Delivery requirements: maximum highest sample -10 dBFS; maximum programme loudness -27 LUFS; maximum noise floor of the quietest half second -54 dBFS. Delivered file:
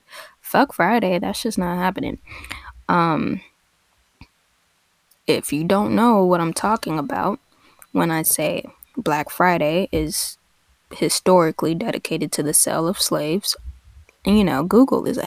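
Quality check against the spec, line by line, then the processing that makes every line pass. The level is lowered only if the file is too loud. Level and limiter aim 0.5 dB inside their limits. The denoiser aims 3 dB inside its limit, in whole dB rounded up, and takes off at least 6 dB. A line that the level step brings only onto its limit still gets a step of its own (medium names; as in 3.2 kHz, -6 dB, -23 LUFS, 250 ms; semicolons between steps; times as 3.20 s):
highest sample -3.5 dBFS: fail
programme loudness -19.5 LUFS: fail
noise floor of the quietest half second -64 dBFS: pass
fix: trim -8 dB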